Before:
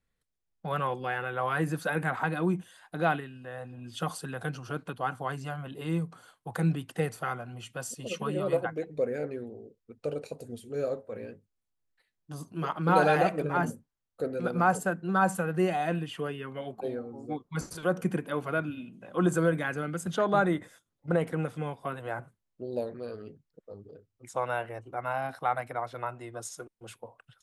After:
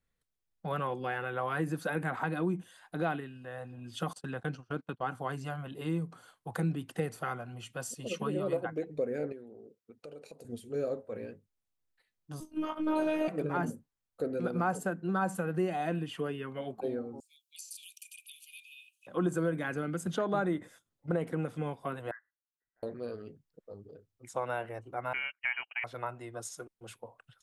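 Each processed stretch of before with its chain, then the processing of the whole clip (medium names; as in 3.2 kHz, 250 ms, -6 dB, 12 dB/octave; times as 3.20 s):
4.13–5.09 s: gate -41 dBFS, range -27 dB + peaking EQ 11 kHz -11 dB 0.55 oct
9.32–10.45 s: high-pass 160 Hz + compression 3:1, threshold -45 dBFS
12.40–13.28 s: robot voice 310 Hz + doubling 19 ms -4 dB
17.20–19.07 s: Chebyshev high-pass 2.4 kHz, order 8 + treble shelf 5.2 kHz +11.5 dB + compression 2:1, threshold -44 dBFS
22.11–22.83 s: rippled Chebyshev high-pass 1.2 kHz, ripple 9 dB + frequency inversion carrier 3.2 kHz + upward expansion, over -54 dBFS
25.13–25.84 s: gate -38 dBFS, range -34 dB + frequency inversion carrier 3 kHz
whole clip: dynamic bell 290 Hz, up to +5 dB, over -40 dBFS, Q 0.92; compression 2:1, threshold -29 dBFS; trim -2 dB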